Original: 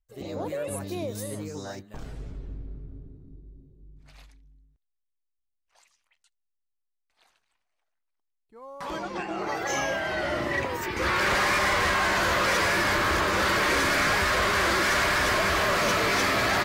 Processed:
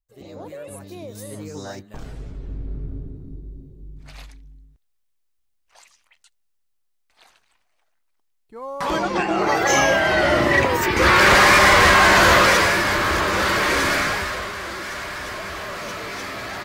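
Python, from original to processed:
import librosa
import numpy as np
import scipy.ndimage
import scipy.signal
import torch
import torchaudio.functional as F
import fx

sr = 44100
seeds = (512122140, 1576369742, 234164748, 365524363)

y = fx.gain(x, sr, db=fx.line((1.0, -4.5), (1.62, 3.5), (2.34, 3.5), (2.84, 11.0), (12.35, 11.0), (12.83, 4.0), (13.93, 4.0), (14.56, -7.0)))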